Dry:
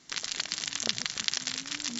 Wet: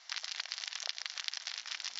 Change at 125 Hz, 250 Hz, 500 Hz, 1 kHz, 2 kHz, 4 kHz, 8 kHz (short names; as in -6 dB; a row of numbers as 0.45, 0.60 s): under -30 dB, under -35 dB, -13.5 dB, -6.0 dB, -5.5 dB, -6.5 dB, n/a